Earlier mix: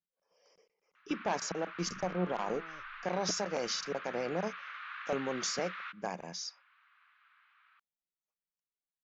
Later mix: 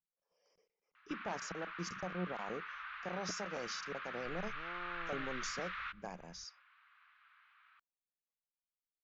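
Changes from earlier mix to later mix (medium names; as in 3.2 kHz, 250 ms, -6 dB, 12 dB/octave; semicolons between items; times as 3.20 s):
speech -9.0 dB; second sound: entry +2.45 s; master: add bass shelf 110 Hz +11.5 dB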